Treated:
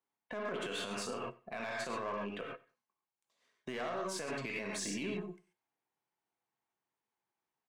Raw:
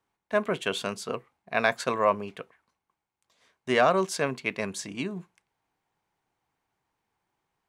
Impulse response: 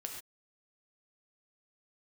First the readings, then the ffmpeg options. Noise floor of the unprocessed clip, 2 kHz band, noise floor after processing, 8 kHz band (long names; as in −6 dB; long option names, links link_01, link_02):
below −85 dBFS, −11.5 dB, below −85 dBFS, −5.0 dB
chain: -filter_complex "[0:a]aeval=exprs='(tanh(5.01*val(0)+0.55)-tanh(0.55))/5.01':channel_layout=same[link_01];[1:a]atrim=start_sample=2205[link_02];[link_01][link_02]afir=irnorm=-1:irlink=0,afftdn=noise_reduction=16:noise_floor=-57,acompressor=threshold=-41dB:ratio=6,highpass=160,alimiter=level_in=15dB:limit=-24dB:level=0:latency=1:release=14,volume=-15dB,aeval=exprs='0.0112*(cos(1*acos(clip(val(0)/0.0112,-1,1)))-cos(1*PI/2))+0.000316*(cos(6*acos(clip(val(0)/0.0112,-1,1)))-cos(6*PI/2))':channel_layout=same,aecho=1:1:93|186:0.0794|0.0183,volume=9dB"